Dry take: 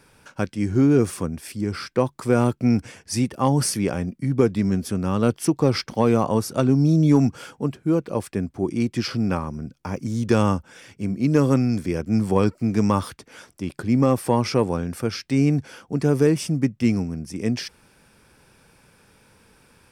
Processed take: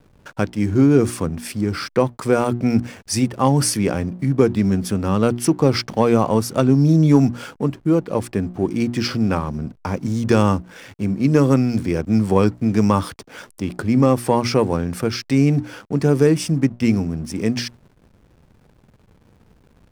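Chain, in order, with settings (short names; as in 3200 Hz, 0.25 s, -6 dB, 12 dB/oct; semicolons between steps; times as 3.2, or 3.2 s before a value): notches 60/120/180/240/300/360 Hz; in parallel at -2.5 dB: compressor, threshold -31 dBFS, peak gain reduction 18 dB; on the sum: backlash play -39.5 dBFS; gain +2.5 dB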